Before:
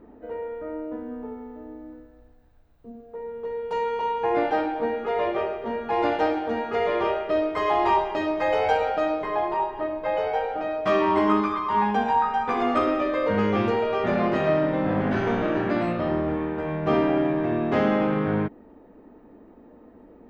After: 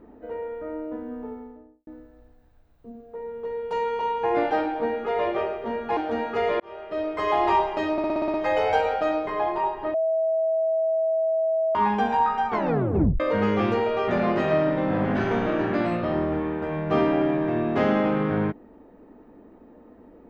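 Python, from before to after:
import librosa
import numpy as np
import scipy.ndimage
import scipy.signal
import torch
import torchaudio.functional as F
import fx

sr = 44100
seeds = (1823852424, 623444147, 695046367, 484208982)

y = fx.studio_fade_out(x, sr, start_s=1.28, length_s=0.59)
y = fx.edit(y, sr, fx.cut(start_s=5.97, length_s=0.38),
    fx.fade_in_span(start_s=6.98, length_s=0.7),
    fx.stutter(start_s=8.3, slice_s=0.06, count=8),
    fx.bleep(start_s=9.9, length_s=1.81, hz=647.0, db=-20.0),
    fx.tape_stop(start_s=12.44, length_s=0.72), tone=tone)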